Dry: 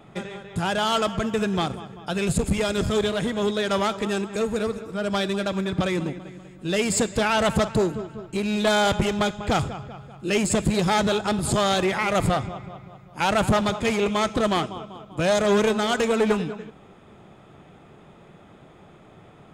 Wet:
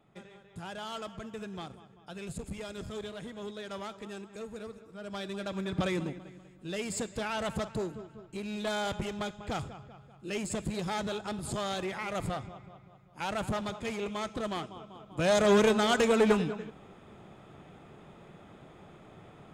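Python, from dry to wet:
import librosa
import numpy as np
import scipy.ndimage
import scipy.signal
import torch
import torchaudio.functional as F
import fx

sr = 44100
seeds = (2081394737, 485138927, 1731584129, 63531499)

y = fx.gain(x, sr, db=fx.line((4.95, -17.0), (5.86, -6.0), (6.76, -12.5), (14.66, -12.5), (15.44, -3.0)))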